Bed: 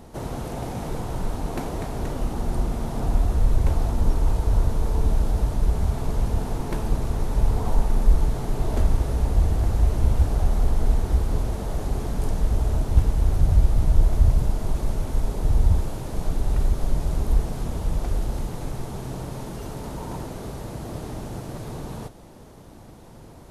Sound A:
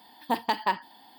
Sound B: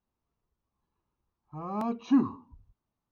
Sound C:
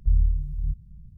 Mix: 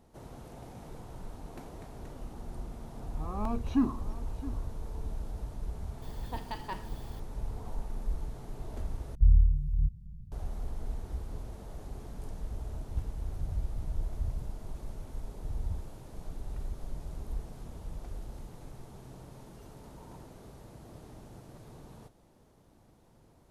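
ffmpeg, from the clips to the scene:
-filter_complex "[0:a]volume=-16.5dB[a];[2:a]aecho=1:1:668:0.158[b];[1:a]aeval=exprs='val(0)+0.5*0.0133*sgn(val(0))':c=same[c];[a]asplit=2[d][e];[d]atrim=end=9.154[f];[3:a]atrim=end=1.17,asetpts=PTS-STARTPTS,volume=-0.5dB[g];[e]atrim=start=10.316[h];[b]atrim=end=3.11,asetpts=PTS-STARTPTS,volume=-3.5dB,afade=t=in:d=0.004:c=hsin,afade=t=out:st=3.106:d=0.004:c=hsin,adelay=1640[i];[c]atrim=end=1.18,asetpts=PTS-STARTPTS,volume=-14.5dB,afade=t=in:d=0.004:c=hsin,afade=t=out:st=1.176:d=0.004:c=hsin,adelay=6020[j];[f][g]acrossfade=d=0.004:c1=hsin:c2=hsin[k];[k][h]acrossfade=d=0.004:c1=hsin:c2=hsin[l];[l][i][j]amix=inputs=3:normalize=0"

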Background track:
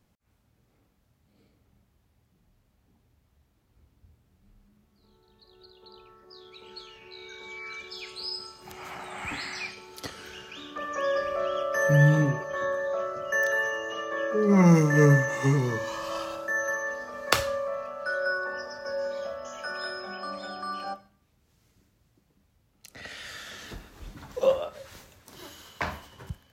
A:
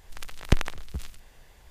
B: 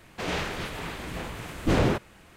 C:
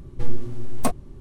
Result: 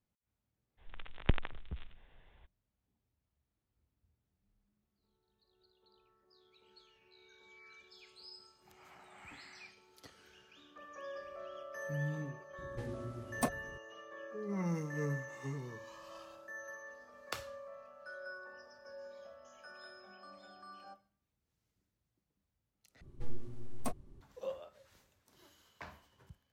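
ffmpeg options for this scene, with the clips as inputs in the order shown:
-filter_complex "[3:a]asplit=2[a][b];[0:a]volume=-18.5dB[c];[1:a]aresample=8000,aresample=44100[d];[a]highpass=57[e];[c]asplit=2[f][g];[f]atrim=end=23.014[h];[b]atrim=end=1.2,asetpts=PTS-STARTPTS,volume=-15dB[i];[g]atrim=start=24.206[j];[d]atrim=end=1.7,asetpts=PTS-STARTPTS,volume=-8.5dB,afade=t=in:d=0.02,afade=t=out:st=1.68:d=0.02,adelay=770[k];[e]atrim=end=1.2,asetpts=PTS-STARTPTS,volume=-9dB,afade=t=in:d=0.004:c=hsin,afade=t=out:st=1.196:d=0.004:c=hsin,adelay=12580[l];[h][i]acrossfade=d=0.004:c1=hsin:c2=hsin[m];[m][j]acrossfade=d=0.004:c1=hsin:c2=hsin[n];[n][k][l]amix=inputs=3:normalize=0"

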